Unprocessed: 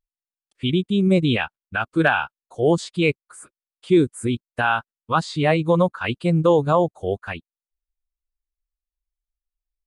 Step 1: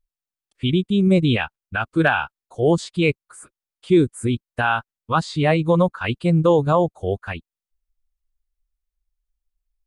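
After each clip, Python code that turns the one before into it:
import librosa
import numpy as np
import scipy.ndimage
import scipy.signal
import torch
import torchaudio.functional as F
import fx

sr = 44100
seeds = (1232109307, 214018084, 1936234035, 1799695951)

y = fx.low_shelf(x, sr, hz=75.0, db=11.5)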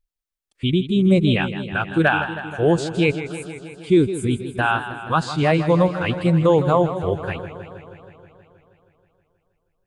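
y = fx.echo_warbled(x, sr, ms=159, feedback_pct=71, rate_hz=2.8, cents=100, wet_db=-12)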